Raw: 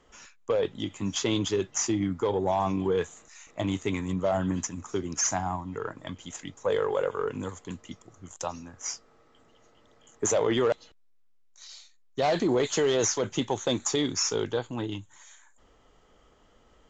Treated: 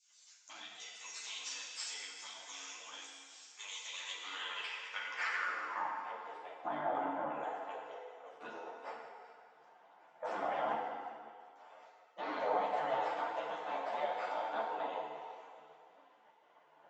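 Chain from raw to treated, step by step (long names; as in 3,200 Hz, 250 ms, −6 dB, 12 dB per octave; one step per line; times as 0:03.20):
gate on every frequency bin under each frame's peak −20 dB weak
high-pass filter 130 Hz 24 dB per octave
high-shelf EQ 4,200 Hz −11 dB
brickwall limiter −35.5 dBFS, peak gain reduction 10.5 dB
echo with a time of its own for lows and highs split 2,400 Hz, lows 104 ms, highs 380 ms, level −14.5 dB
band-pass filter sweep 6,600 Hz → 650 Hz, 0:03.58–0:06.35
feedback delay network reverb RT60 2.1 s, low-frequency decay 0.8×, high-frequency decay 0.8×, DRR −2 dB
string-ensemble chorus
level +17 dB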